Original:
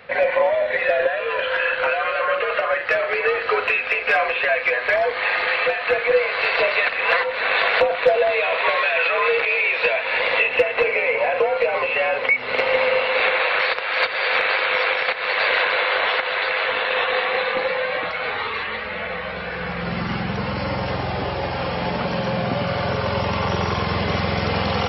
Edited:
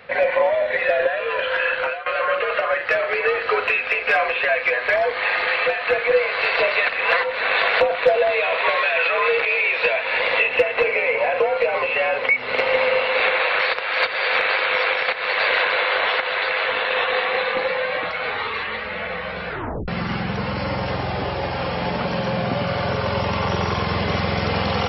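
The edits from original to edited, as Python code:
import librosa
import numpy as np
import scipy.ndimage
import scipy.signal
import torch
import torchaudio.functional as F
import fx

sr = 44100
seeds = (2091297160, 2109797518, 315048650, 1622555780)

y = fx.edit(x, sr, fx.fade_out_to(start_s=1.77, length_s=0.29, floor_db=-16.5),
    fx.tape_stop(start_s=19.49, length_s=0.39), tone=tone)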